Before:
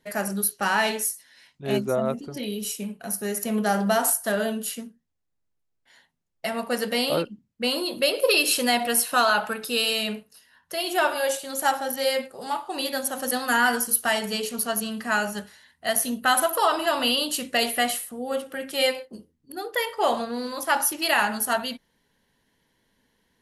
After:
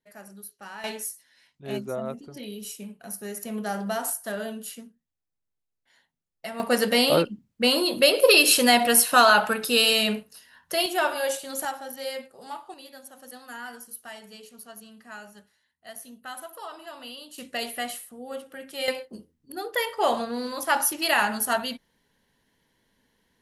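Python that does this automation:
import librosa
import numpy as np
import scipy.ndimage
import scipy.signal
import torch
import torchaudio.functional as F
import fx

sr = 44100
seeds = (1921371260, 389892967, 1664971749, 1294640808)

y = fx.gain(x, sr, db=fx.steps((0.0, -18.0), (0.84, -7.0), (6.6, 4.0), (10.86, -2.0), (11.65, -9.0), (12.74, -18.0), (17.38, -8.0), (18.88, -0.5)))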